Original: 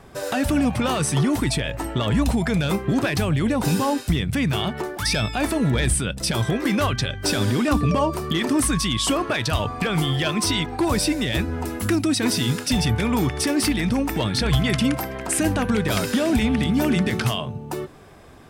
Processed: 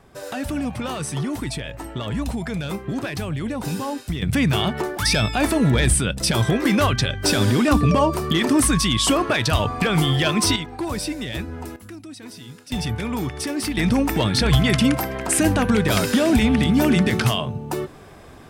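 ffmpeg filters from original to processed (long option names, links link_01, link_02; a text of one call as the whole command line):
ffmpeg -i in.wav -af "asetnsamples=nb_out_samples=441:pad=0,asendcmd='4.22 volume volume 3dB;10.56 volume volume -5.5dB;11.76 volume volume -17.5dB;12.72 volume volume -4.5dB;13.77 volume volume 3dB',volume=-5.5dB" out.wav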